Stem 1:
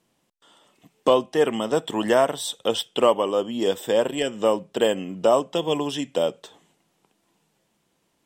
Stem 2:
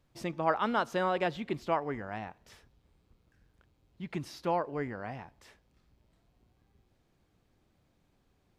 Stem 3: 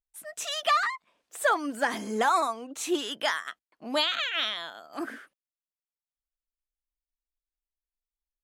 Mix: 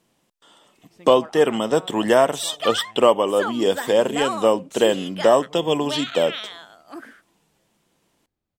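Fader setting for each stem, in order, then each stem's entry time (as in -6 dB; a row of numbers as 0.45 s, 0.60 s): +3.0 dB, -12.5 dB, -3.0 dB; 0.00 s, 0.75 s, 1.95 s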